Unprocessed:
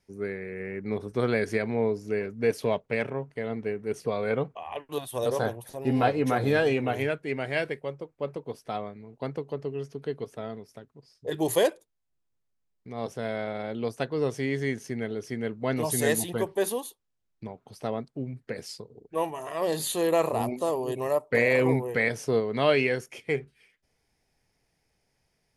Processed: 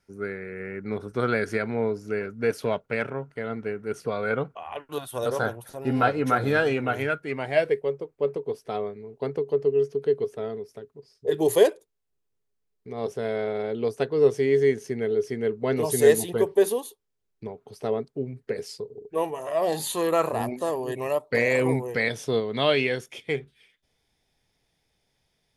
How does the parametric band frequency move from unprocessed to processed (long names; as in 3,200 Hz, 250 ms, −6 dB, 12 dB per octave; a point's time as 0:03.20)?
parametric band +13.5 dB 0.24 octaves
0:07.27 1,400 Hz
0:07.74 420 Hz
0:19.25 420 Hz
0:20.38 1,700 Hz
0:20.91 1,700 Hz
0:21.67 10,000 Hz
0:22.11 3,500 Hz